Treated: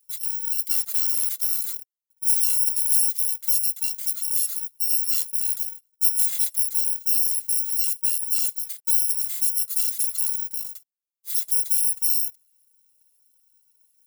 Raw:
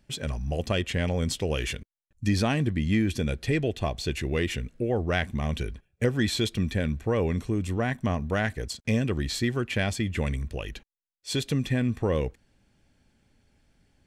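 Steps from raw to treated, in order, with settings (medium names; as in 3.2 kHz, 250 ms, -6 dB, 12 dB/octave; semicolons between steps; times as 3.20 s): bit-reversed sample order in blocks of 256 samples; differentiator; 0.70–1.58 s: short-mantissa float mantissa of 2-bit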